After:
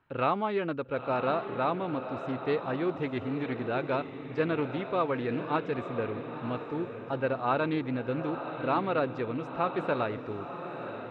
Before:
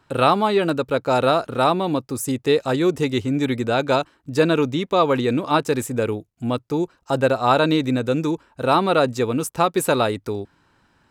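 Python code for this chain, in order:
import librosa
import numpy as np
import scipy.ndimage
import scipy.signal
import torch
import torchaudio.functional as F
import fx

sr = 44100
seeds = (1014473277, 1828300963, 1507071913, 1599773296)

y = fx.ladder_lowpass(x, sr, hz=3200.0, resonance_pct=25)
y = fx.echo_diffused(y, sr, ms=956, feedback_pct=45, wet_db=-8.5)
y = fx.doppler_dist(y, sr, depth_ms=0.11)
y = F.gain(torch.from_numpy(y), -5.5).numpy()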